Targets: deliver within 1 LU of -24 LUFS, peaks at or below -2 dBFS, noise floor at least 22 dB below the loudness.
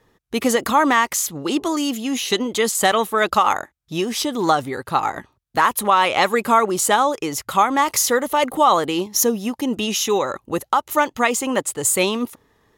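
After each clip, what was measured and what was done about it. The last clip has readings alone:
loudness -19.5 LUFS; peak level -4.5 dBFS; loudness target -24.0 LUFS
-> trim -4.5 dB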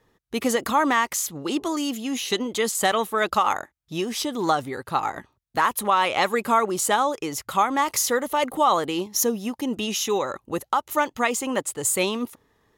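loudness -24.0 LUFS; peak level -9.0 dBFS; noise floor -72 dBFS

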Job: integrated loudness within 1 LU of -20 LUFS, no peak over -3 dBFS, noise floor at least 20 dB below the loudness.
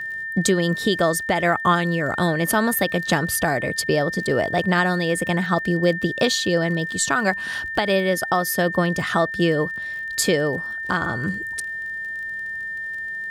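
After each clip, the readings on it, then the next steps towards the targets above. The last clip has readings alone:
tick rate 37 per s; steady tone 1.8 kHz; tone level -27 dBFS; loudness -21.5 LUFS; peak level -7.0 dBFS; loudness target -20.0 LUFS
-> de-click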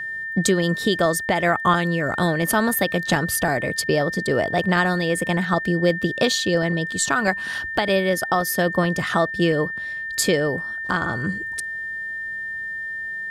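tick rate 0.15 per s; steady tone 1.8 kHz; tone level -27 dBFS
-> band-stop 1.8 kHz, Q 30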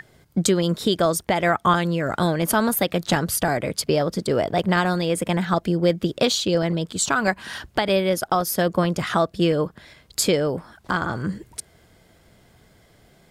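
steady tone not found; loudness -22.0 LUFS; peak level -7.5 dBFS; loudness target -20.0 LUFS
-> trim +2 dB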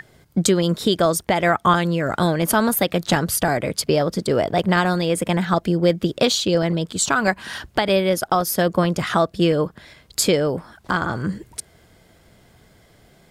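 loudness -20.0 LUFS; peak level -5.5 dBFS; noise floor -55 dBFS

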